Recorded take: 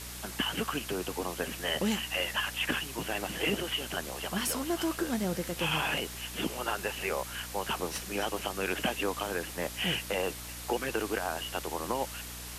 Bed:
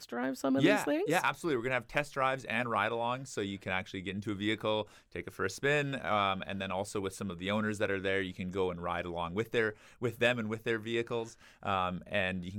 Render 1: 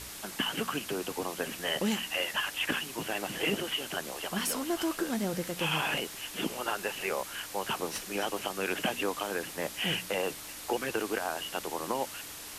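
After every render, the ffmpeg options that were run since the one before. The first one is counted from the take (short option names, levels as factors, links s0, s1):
-af "bandreject=f=60:t=h:w=4,bandreject=f=120:t=h:w=4,bandreject=f=180:t=h:w=4,bandreject=f=240:t=h:w=4"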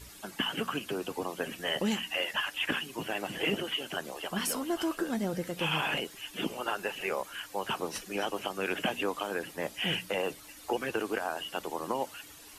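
-af "afftdn=nr=11:nf=-44"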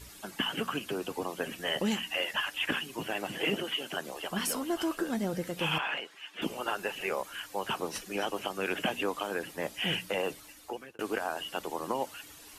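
-filter_complex "[0:a]asettb=1/sr,asplit=3[s0][s1][s2];[s0]atrim=end=3.344[s3];[s1]atrim=start=3.34:end=4.08,asetpts=PTS-STARTPTS,afade=t=in:d=0.004:c=qsin,afade=t=out:st=0.736:d=0.004:c=qsin,highpass=120[s4];[s2]atrim=start=4.076[s5];[s3][s4]acrossfade=d=0.004:c1=hsin:c2=qsin[s6];[s6][s5]acrossfade=d=0.004:c1=qsin:c2=hsin,asettb=1/sr,asplit=3[s7][s8][s9];[s7]atrim=end=5.784[s10];[s8]atrim=start=5.78:end=6.42,asetpts=PTS-STARTPTS,afade=t=in:d=0.004:c=qsin,afade=t=out:st=0.636:d=0.004:c=qsin,bandpass=f=1500:t=q:w=0.73[s11];[s9]atrim=start=6.416[s12];[s10][s11]acrossfade=d=0.004:c1=hsin:c2=qsin[s13];[s13][s12]acrossfade=d=0.004:c1=qsin:c2=hsin,asplit=2[s14][s15];[s14]atrim=end=10.99,asetpts=PTS-STARTPTS,afade=t=out:st=10.37:d=0.62[s16];[s15]atrim=start=10.99,asetpts=PTS-STARTPTS,afade=t=in:d=0.004:c=hsin[s17];[s16][s17]concat=n=2:v=0:a=1"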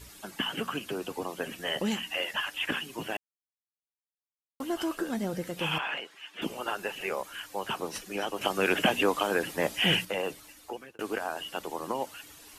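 -filter_complex "[0:a]asettb=1/sr,asplit=3[s0][s1][s2];[s0]atrim=end=8.414[s3];[s1]atrim=start=8.41:end=10.05,asetpts=PTS-STARTPTS,afade=t=in:d=0.004:c=qsin,afade=t=out:st=1.636:d=0.004:c=qsin,acontrast=67[s4];[s2]atrim=start=10.046[s5];[s3][s4]acrossfade=d=0.004:c1=hsin:c2=qsin[s6];[s6][s5]acrossfade=d=0.004:c1=qsin:c2=hsin,asplit=3[s7][s8][s9];[s7]atrim=end=3.17,asetpts=PTS-STARTPTS,afade=t=out:st=3.166:d=0.004:c=hsin[s10];[s8]atrim=start=3.17:end=4.6,asetpts=PTS-STARTPTS,volume=0[s11];[s9]atrim=start=4.6,asetpts=PTS-STARTPTS,afade=t=in:d=0.004:c=hsin[s12];[s10][s11][s12]concat=n=3:v=0:a=1"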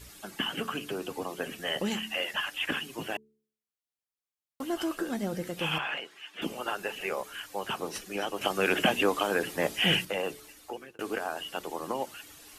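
-af "bandreject=f=960:w=18,bandreject=f=72.45:t=h:w=4,bandreject=f=144.9:t=h:w=4,bandreject=f=217.35:t=h:w=4,bandreject=f=289.8:t=h:w=4,bandreject=f=362.25:t=h:w=4,bandreject=f=434.7:t=h:w=4"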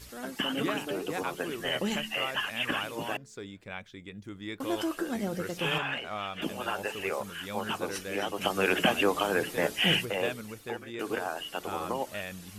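-filter_complex "[1:a]volume=0.473[s0];[0:a][s0]amix=inputs=2:normalize=0"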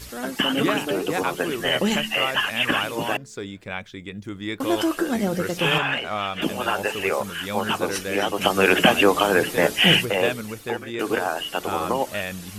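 -af "volume=2.82"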